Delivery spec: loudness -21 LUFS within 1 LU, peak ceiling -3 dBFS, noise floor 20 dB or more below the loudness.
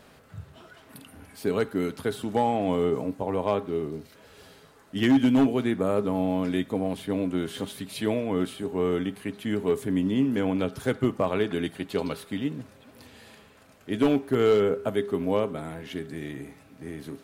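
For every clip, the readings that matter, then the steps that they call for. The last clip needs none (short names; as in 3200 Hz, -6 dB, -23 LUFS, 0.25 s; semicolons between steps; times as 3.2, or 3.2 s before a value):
clipped 0.3%; flat tops at -14.5 dBFS; loudness -27.0 LUFS; peak -14.5 dBFS; loudness target -21.0 LUFS
-> clip repair -14.5 dBFS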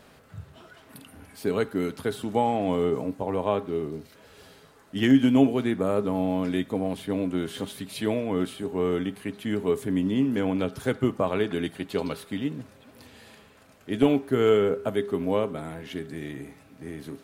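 clipped 0.0%; loudness -26.5 LUFS; peak -7.5 dBFS; loudness target -21.0 LUFS
-> gain +5.5 dB; limiter -3 dBFS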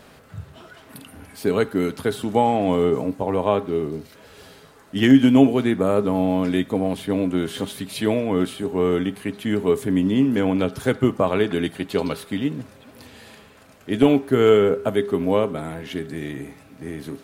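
loudness -21.0 LUFS; peak -3.0 dBFS; noise floor -49 dBFS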